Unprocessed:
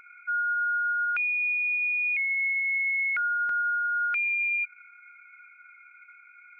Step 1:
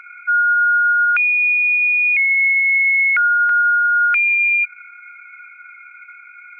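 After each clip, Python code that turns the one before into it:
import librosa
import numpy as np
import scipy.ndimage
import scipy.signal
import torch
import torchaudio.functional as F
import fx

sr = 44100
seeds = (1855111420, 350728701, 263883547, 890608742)

y = fx.peak_eq(x, sr, hz=1700.0, db=12.5, octaves=3.0)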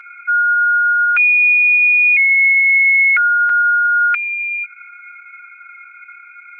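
y = x + 0.67 * np.pad(x, (int(6.5 * sr / 1000.0), 0))[:len(x)]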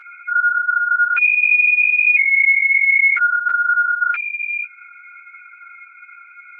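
y = fx.ensemble(x, sr)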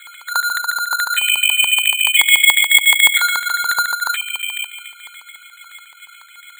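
y = fx.echo_wet_highpass(x, sr, ms=251, feedback_pct=36, hz=2500.0, wet_db=-9)
y = fx.filter_lfo_highpass(y, sr, shape='square', hz=7.0, low_hz=940.0, high_hz=1900.0, q=5.6)
y = np.repeat(y[::8], 8)[:len(y)]
y = y * librosa.db_to_amplitude(-6.0)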